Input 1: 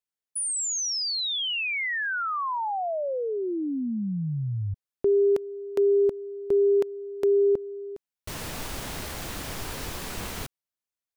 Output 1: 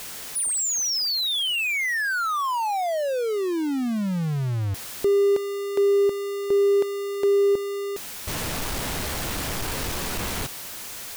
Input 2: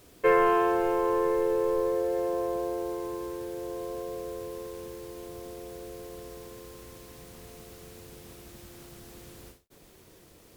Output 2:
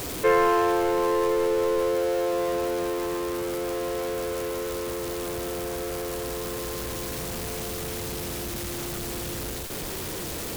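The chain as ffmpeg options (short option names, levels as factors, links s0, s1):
-af "aeval=exprs='val(0)+0.5*0.0422*sgn(val(0))':c=same"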